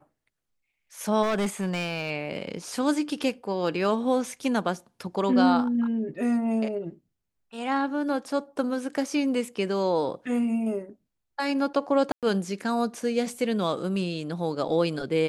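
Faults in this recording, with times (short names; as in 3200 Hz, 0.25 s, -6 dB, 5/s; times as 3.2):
1.22–2.11 clipped -22 dBFS
12.12–12.23 gap 0.107 s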